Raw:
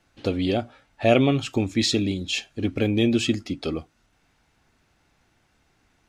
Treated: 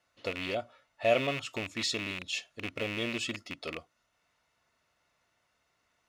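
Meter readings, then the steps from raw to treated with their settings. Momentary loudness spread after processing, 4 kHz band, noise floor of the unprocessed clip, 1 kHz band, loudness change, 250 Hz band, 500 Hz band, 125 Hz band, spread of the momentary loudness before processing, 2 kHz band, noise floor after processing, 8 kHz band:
12 LU, −7.5 dB, −66 dBFS, −6.5 dB, −9.5 dB, −17.0 dB, −8.5 dB, −17.0 dB, 10 LU, −3.0 dB, −77 dBFS, −7.5 dB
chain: loose part that buzzes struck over −26 dBFS, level −16 dBFS
low shelf with overshoot 450 Hz −8.5 dB, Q 1.5
notch comb filter 800 Hz
level −6.5 dB

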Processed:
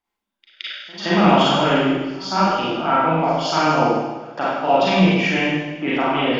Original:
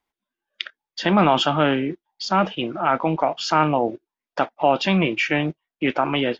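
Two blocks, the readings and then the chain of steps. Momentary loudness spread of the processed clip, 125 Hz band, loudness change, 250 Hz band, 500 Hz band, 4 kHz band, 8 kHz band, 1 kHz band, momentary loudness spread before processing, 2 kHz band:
12 LU, +3.5 dB, +3.0 dB, +3.5 dB, +3.0 dB, +3.0 dB, can't be measured, +3.0 dB, 13 LU, +3.0 dB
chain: echo ahead of the sound 170 ms −22 dB
four-comb reverb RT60 1.2 s, combs from 33 ms, DRR −8 dB
level −5.5 dB

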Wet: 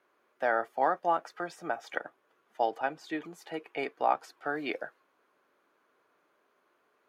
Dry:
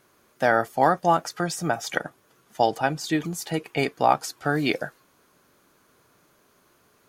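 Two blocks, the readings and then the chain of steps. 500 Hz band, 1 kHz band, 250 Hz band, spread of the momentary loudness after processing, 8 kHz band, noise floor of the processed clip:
−7.5 dB, −7.0 dB, −12.5 dB, 11 LU, −21.5 dB, −73 dBFS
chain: three-way crossover with the lows and the highs turned down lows −22 dB, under 290 Hz, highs −16 dB, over 3,100 Hz
level −7 dB

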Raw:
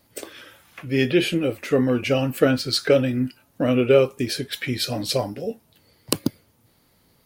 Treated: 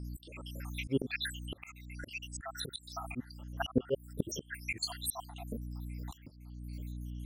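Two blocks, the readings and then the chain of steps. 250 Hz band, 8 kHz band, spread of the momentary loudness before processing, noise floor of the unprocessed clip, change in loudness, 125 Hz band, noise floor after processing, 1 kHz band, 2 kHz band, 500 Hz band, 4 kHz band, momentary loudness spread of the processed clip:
−17.0 dB, −9.0 dB, 13 LU, −62 dBFS, −17.5 dB, −14.0 dB, −57 dBFS, −12.0 dB, −12.5 dB, −21.0 dB, −14.0 dB, 12 LU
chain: time-frequency cells dropped at random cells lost 84%
mains hum 60 Hz, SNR 19 dB
volume swells 494 ms
level +9.5 dB

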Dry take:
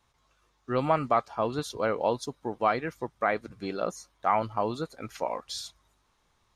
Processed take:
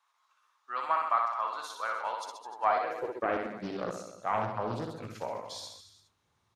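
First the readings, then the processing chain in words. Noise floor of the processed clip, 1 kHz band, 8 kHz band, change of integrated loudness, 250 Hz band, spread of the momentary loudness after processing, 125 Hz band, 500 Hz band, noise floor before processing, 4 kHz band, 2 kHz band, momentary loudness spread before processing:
−75 dBFS, −1.5 dB, −5.5 dB, −3.0 dB, −7.0 dB, 12 LU, −6.5 dB, −6.5 dB, −71 dBFS, −4.5 dB, −2.5 dB, 10 LU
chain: reverse bouncing-ball delay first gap 60 ms, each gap 1.15×, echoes 5
high-pass filter sweep 1,100 Hz → 100 Hz, 0:02.50–0:04.00
highs frequency-modulated by the lows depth 0.55 ms
level −7 dB

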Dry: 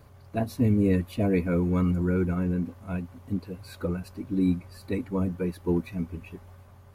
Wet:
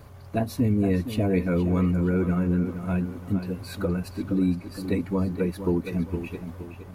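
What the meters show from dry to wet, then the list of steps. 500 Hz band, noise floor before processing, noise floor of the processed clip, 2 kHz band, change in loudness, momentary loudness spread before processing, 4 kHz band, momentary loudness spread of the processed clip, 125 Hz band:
+2.0 dB, −51 dBFS, −44 dBFS, +2.5 dB, +1.5 dB, 11 LU, +5.0 dB, 9 LU, +2.0 dB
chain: downward compressor 2 to 1, threshold −30 dBFS, peak gain reduction 6.5 dB
on a send: tape delay 467 ms, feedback 42%, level −8.5 dB, low-pass 4,300 Hz
on the sum: level +6 dB

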